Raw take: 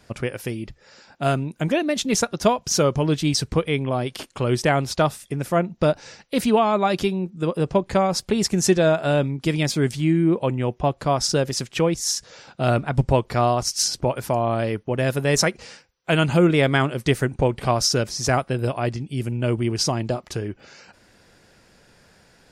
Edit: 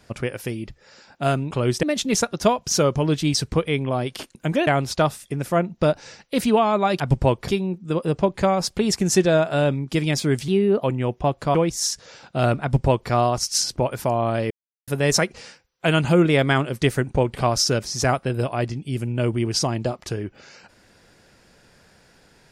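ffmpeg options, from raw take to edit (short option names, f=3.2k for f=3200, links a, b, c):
-filter_complex "[0:a]asplit=12[a][b][c][d][e][f][g][h][i][j][k][l];[a]atrim=end=1.512[m];[b]atrim=start=4.348:end=4.672[n];[c]atrim=start=1.828:end=4.352[o];[d]atrim=start=1.508:end=1.832[p];[e]atrim=start=4.668:end=7.002[q];[f]atrim=start=12.868:end=13.352[r];[g]atrim=start=6.998:end=10.004[s];[h]atrim=start=10:end=10.43,asetpts=PTS-STARTPTS,asetrate=53361,aresample=44100[t];[i]atrim=start=10.426:end=11.142[u];[j]atrim=start=11.788:end=14.75,asetpts=PTS-STARTPTS,afade=t=out:st=2.958:d=0.004:c=hsin[v];[k]atrim=start=14.75:end=15.12,asetpts=PTS-STARTPTS,volume=0[w];[l]atrim=start=15.12,asetpts=PTS-STARTPTS,afade=t=in:d=0.004:c=hsin[x];[m][n]acrossfade=d=0.004:c1=hsin:c2=hsin[y];[y][o]acrossfade=d=0.004:c1=hsin:c2=hsin[z];[z][p]acrossfade=d=0.004:c1=hsin:c2=hsin[aa];[aa][q]acrossfade=d=0.004:c1=hsin:c2=hsin[ab];[ab][r]acrossfade=d=0.004:c1=hsin:c2=hsin[ac];[ac][s]acrossfade=d=0.004:c1=hsin:c2=hsin[ad];[ad][t]acrossfade=d=0.004:c1=hsin:c2=hsin[ae];[ae][u]acrossfade=d=0.004:c1=hsin:c2=hsin[af];[v][w][x]concat=n=3:v=0:a=1[ag];[af][ag]acrossfade=d=0.004:c1=hsin:c2=hsin"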